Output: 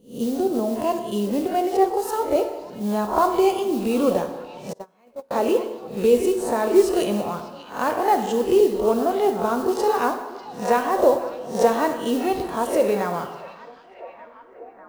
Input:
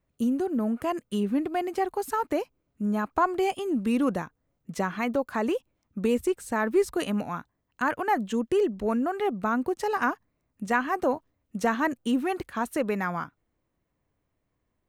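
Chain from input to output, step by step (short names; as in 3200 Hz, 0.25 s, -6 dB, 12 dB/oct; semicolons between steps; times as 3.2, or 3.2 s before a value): spectral swells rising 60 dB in 0.38 s; modulation noise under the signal 22 dB; bell 1400 Hz -7 dB 1.3 oct; delay with a stepping band-pass 0.594 s, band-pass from 3600 Hz, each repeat -0.7 oct, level -11.5 dB; plate-style reverb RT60 1.2 s, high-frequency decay 0.75×, DRR 5.5 dB; 4.73–5.31 gate -21 dBFS, range -34 dB; graphic EQ 250/500/1000/2000/4000 Hz -4/+8/+4/-4/+4 dB; 1.77–2.36 three-band expander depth 70%; gain +2 dB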